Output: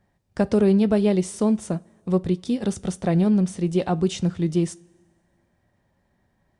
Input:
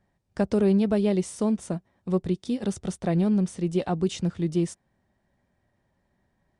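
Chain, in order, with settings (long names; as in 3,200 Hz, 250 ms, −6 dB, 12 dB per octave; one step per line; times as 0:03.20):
coupled-rooms reverb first 0.28 s, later 1.7 s, from −18 dB, DRR 16 dB
level +3.5 dB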